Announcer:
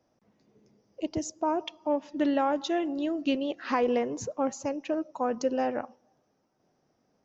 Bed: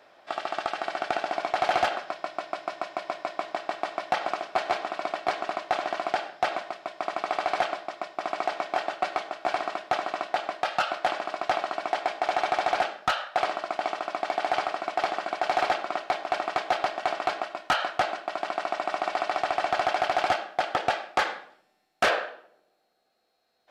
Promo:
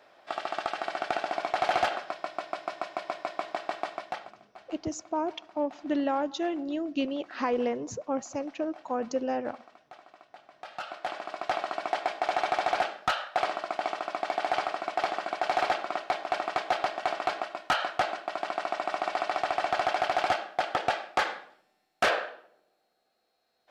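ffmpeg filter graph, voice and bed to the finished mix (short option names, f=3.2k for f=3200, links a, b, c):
-filter_complex "[0:a]adelay=3700,volume=-2dB[a];[1:a]volume=19.5dB,afade=t=out:st=3.78:d=0.55:silence=0.0841395,afade=t=in:st=10.49:d=1.26:silence=0.0841395[b];[a][b]amix=inputs=2:normalize=0"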